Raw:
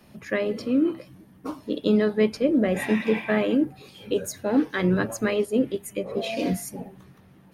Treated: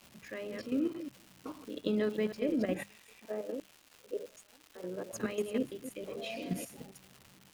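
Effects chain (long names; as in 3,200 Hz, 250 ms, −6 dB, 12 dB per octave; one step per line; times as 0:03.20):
delay that plays each chunk backwards 155 ms, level −8.5 dB
output level in coarse steps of 11 dB
0:02.83–0:05.13: auto-filter band-pass square 1.3 Hz 520–7,400 Hz
surface crackle 400 per second −37 dBFS
parametric band 2,800 Hz +3.5 dB 0.37 octaves
mains-hum notches 50/100/150/200 Hz
level −7.5 dB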